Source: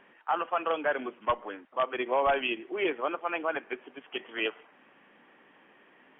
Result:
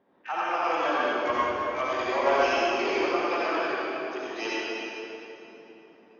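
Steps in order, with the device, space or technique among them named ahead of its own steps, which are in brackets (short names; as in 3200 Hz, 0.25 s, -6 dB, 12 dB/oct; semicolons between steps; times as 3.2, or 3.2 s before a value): HPF 45 Hz 24 dB/oct; low-pass opened by the level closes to 660 Hz, open at -24 dBFS; shimmer-style reverb (harmoniser +12 st -9 dB; reverb RT60 3.3 s, pre-delay 60 ms, DRR -8 dB); gain -5 dB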